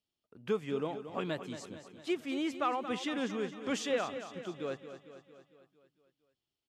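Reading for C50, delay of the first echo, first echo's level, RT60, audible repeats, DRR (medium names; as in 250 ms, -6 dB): no reverb, 227 ms, -11.0 dB, no reverb, 6, no reverb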